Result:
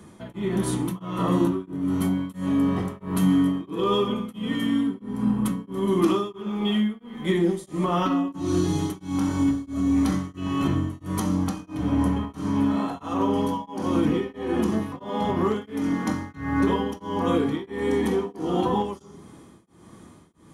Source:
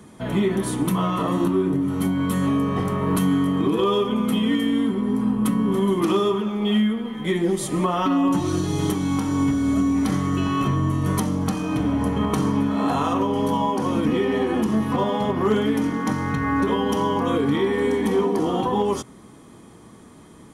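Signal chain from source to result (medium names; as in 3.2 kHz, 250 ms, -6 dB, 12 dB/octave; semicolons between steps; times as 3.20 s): on a send at -6.5 dB: reverberation RT60 0.65 s, pre-delay 3 ms; on the sum: tremolo of two beating tones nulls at 1.5 Hz; trim -2 dB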